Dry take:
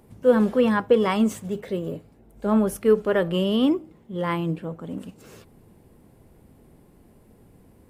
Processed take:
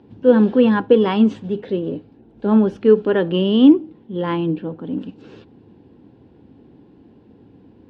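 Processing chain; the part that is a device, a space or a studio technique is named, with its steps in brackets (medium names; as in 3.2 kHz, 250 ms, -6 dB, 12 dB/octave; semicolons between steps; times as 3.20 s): guitar cabinet (cabinet simulation 100–3800 Hz, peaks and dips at 160 Hz -4 dB, 290 Hz +7 dB, 620 Hz -8 dB, 1.2 kHz -9 dB, 2.1 kHz -10 dB); trim +6 dB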